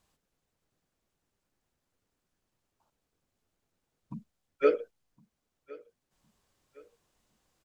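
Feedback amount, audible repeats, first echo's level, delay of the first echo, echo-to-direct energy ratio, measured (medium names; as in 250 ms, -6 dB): 40%, 2, -22.5 dB, 1062 ms, -22.0 dB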